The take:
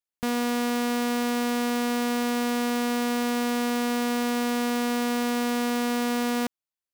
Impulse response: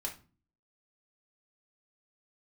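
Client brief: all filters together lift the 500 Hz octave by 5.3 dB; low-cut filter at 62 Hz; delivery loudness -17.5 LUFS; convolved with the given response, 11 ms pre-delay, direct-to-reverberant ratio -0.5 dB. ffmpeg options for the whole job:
-filter_complex "[0:a]highpass=62,equalizer=f=500:t=o:g=5.5,asplit=2[s0][s1];[1:a]atrim=start_sample=2205,adelay=11[s2];[s1][s2]afir=irnorm=-1:irlink=0,volume=1[s3];[s0][s3]amix=inputs=2:normalize=0,volume=2.11"

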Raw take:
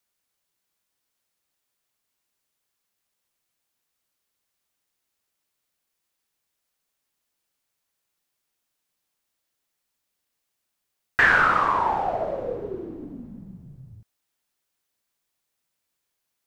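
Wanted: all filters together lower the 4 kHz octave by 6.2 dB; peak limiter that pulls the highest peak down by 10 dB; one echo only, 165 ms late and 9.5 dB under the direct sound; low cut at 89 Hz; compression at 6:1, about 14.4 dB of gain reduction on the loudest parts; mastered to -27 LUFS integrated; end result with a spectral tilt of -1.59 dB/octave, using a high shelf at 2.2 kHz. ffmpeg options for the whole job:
-af "highpass=89,highshelf=f=2200:g=-3.5,equalizer=f=4000:t=o:g=-5.5,acompressor=threshold=0.0251:ratio=6,alimiter=level_in=1.41:limit=0.0631:level=0:latency=1,volume=0.708,aecho=1:1:165:0.335,volume=3.35"

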